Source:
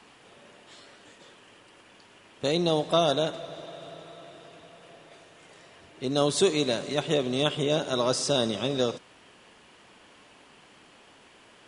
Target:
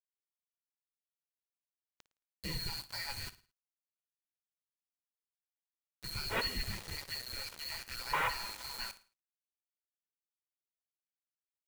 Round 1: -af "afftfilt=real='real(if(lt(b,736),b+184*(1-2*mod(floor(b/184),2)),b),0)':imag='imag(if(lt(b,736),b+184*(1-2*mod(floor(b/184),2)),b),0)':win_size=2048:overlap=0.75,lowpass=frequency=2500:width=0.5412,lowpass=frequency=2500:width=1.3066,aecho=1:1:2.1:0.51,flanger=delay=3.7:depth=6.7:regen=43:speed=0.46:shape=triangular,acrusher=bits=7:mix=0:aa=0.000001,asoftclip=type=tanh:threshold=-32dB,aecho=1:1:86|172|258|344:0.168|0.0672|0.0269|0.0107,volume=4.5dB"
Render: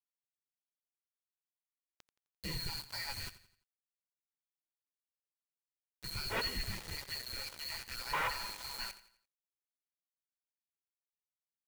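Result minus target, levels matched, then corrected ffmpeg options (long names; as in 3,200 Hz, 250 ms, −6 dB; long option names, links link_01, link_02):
echo 31 ms late; soft clipping: distortion +11 dB
-af "afftfilt=real='real(if(lt(b,736),b+184*(1-2*mod(floor(b/184),2)),b),0)':imag='imag(if(lt(b,736),b+184*(1-2*mod(floor(b/184),2)),b),0)':win_size=2048:overlap=0.75,lowpass=frequency=2500:width=0.5412,lowpass=frequency=2500:width=1.3066,aecho=1:1:2.1:0.51,flanger=delay=3.7:depth=6.7:regen=43:speed=0.46:shape=triangular,acrusher=bits=7:mix=0:aa=0.000001,asoftclip=type=tanh:threshold=-24.5dB,aecho=1:1:55|110|165|220:0.168|0.0672|0.0269|0.0107,volume=4.5dB"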